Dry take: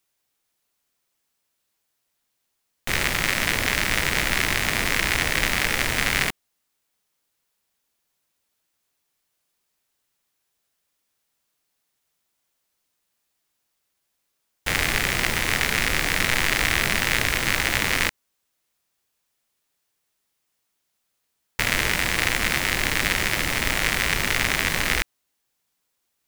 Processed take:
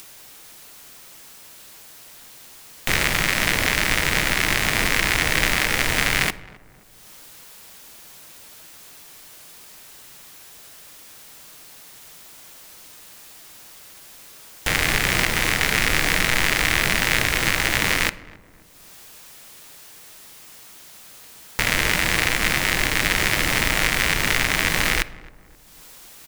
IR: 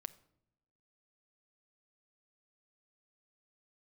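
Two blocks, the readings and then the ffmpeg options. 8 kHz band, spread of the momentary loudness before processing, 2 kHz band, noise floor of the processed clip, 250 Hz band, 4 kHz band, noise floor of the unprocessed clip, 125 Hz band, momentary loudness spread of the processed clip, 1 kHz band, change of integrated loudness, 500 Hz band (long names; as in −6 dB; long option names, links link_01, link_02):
+2.5 dB, 3 LU, +2.0 dB, −47 dBFS, +2.5 dB, +2.0 dB, −76 dBFS, +2.5 dB, 3 LU, +2.5 dB, +2.0 dB, +2.5 dB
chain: -filter_complex "[0:a]alimiter=limit=-5.5dB:level=0:latency=1:release=242,acompressor=mode=upward:threshold=-26dB:ratio=2.5,asplit=2[link_01][link_02];[link_02]adelay=265,lowpass=frequency=1200:poles=1,volume=-19.5dB,asplit=2[link_03][link_04];[link_04]adelay=265,lowpass=frequency=1200:poles=1,volume=0.51,asplit=2[link_05][link_06];[link_06]adelay=265,lowpass=frequency=1200:poles=1,volume=0.51,asplit=2[link_07][link_08];[link_08]adelay=265,lowpass=frequency=1200:poles=1,volume=0.51[link_09];[link_01][link_03][link_05][link_07][link_09]amix=inputs=5:normalize=0,asplit=2[link_10][link_11];[1:a]atrim=start_sample=2205[link_12];[link_11][link_12]afir=irnorm=-1:irlink=0,volume=13.5dB[link_13];[link_10][link_13]amix=inputs=2:normalize=0,volume=-8dB"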